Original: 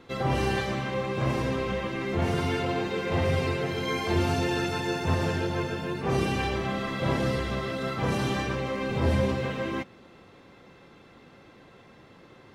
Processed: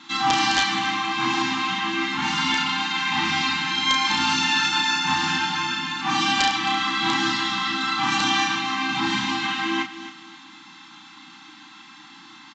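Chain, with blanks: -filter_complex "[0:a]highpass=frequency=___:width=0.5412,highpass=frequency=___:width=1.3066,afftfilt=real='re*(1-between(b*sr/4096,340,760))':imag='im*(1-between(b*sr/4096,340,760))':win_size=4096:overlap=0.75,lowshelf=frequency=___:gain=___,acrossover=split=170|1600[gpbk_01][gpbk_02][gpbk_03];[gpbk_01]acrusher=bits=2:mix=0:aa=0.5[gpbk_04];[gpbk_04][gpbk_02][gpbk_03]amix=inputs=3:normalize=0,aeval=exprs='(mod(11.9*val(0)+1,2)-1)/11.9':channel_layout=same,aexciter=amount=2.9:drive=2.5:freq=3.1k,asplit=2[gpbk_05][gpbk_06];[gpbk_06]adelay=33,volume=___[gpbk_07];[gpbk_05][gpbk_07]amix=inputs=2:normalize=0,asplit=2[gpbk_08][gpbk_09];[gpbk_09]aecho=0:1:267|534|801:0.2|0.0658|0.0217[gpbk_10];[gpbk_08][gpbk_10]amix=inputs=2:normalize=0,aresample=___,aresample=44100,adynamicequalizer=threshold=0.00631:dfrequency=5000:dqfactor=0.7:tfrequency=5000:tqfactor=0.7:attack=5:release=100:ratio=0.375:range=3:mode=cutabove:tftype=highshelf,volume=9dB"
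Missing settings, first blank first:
56, 56, 220, -10.5, -4.5dB, 16000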